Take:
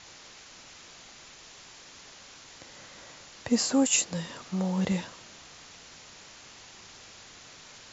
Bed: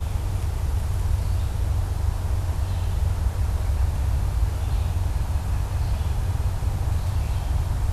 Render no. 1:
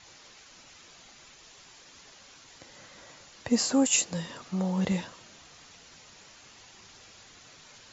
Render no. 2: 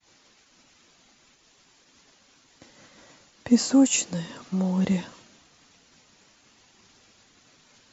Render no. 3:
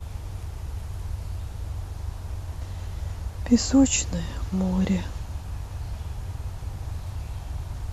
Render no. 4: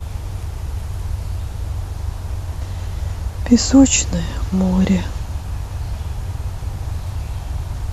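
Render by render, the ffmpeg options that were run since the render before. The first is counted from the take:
-af "afftdn=nr=6:nf=-51"
-af "equalizer=f=250:w=1.4:g=7,agate=range=-33dB:threshold=-46dB:ratio=3:detection=peak"
-filter_complex "[1:a]volume=-9dB[a];[0:a][a]amix=inputs=2:normalize=0"
-af "volume=8dB,alimiter=limit=-1dB:level=0:latency=1"

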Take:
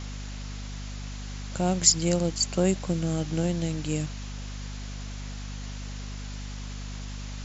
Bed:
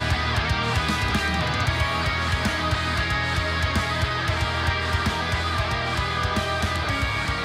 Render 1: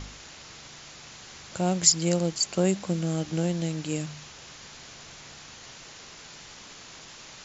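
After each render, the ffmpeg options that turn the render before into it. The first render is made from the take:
-af "bandreject=f=50:t=h:w=4,bandreject=f=100:t=h:w=4,bandreject=f=150:t=h:w=4,bandreject=f=200:t=h:w=4,bandreject=f=250:t=h:w=4"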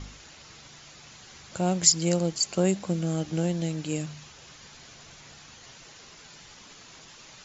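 -af "afftdn=nr=6:nf=-47"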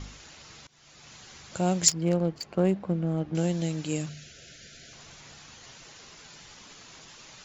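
-filter_complex "[0:a]asettb=1/sr,asplit=3[a][b][c];[a]atrim=end=1.884[d];[b]atrim=start=1.88:end=3.35,asetpts=PTS-STARTPTS,afade=t=in:d=0.004:c=qsin,afade=t=out:st=1.466:d=0.004:c=qsin,adynamicsmooth=sensitivity=1:basefreq=1.5k[e];[c]atrim=start=3.346[f];[d][e]acrossfade=d=0.004:c1=hsin:c2=qsin[g];[g][f]acrossfade=d=0.004:c1=qsin:c2=hsin,asettb=1/sr,asplit=3[h][i][j];[h]atrim=end=4.094[k];[i]atrim=start=4.09:end=4.93,asetpts=PTS-STARTPTS,afade=t=in:d=0.004:c=qsin,afade=t=out:st=0.836:d=0.004:c=qsin,asuperstop=centerf=980:order=20:qfactor=1.6[l];[j]atrim=start=4.926[m];[k][l]acrossfade=d=0.004:c1=hsin:c2=qsin[n];[n][m]acrossfade=d=0.004:c1=qsin:c2=hsin,asplit=2[o][p];[o]atrim=end=0.67,asetpts=PTS-STARTPTS,afade=t=out:st=0.666:d=0.004:c=hsin:silence=0.0841395[q];[p]atrim=start=0.67,asetpts=PTS-STARTPTS,afade=t=in:d=0.47:silence=0.0841395[r];[q][r]concat=n=2:v=0:a=1"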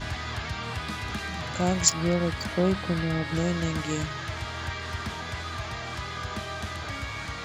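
-filter_complex "[1:a]volume=-10dB[a];[0:a][a]amix=inputs=2:normalize=0"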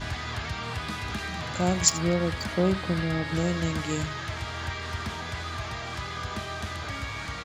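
-af "aecho=1:1:84:0.126"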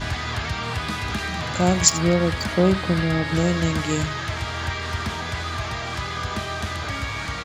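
-af "volume=6dB,alimiter=limit=-1dB:level=0:latency=1"

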